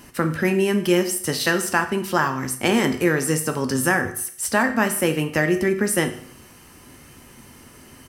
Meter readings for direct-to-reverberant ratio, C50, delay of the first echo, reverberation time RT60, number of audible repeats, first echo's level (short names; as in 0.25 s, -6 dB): 6.0 dB, 11.5 dB, 0.153 s, 0.55 s, 1, -22.5 dB